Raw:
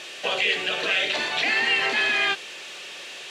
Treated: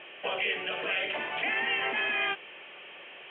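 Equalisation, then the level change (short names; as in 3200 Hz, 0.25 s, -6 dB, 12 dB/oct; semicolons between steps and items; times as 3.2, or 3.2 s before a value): rippled Chebyshev low-pass 3200 Hz, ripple 3 dB; air absorption 140 m; -3.5 dB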